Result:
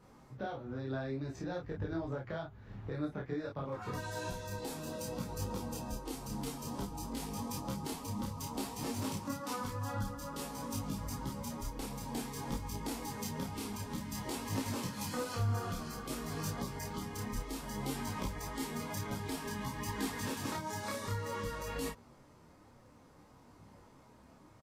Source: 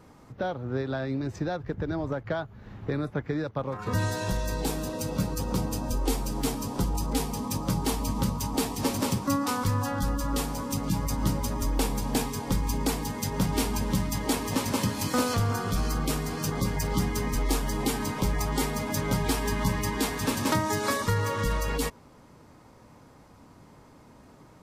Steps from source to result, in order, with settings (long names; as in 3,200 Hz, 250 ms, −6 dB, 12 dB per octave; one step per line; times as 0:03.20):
downward compressor, threshold −28 dBFS, peak gain reduction 8 dB
double-tracking delay 30 ms −2.5 dB
micro pitch shift up and down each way 19 cents
level −4.5 dB